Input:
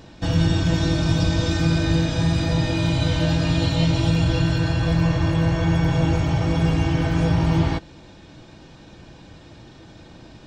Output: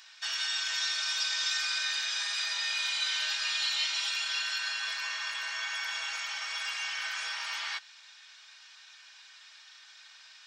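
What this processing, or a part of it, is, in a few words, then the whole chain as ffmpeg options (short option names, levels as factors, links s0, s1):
headphones lying on a table: -af "highpass=f=1400:w=0.5412,highpass=f=1400:w=1.3066,equalizer=f=5300:t=o:w=0.52:g=4"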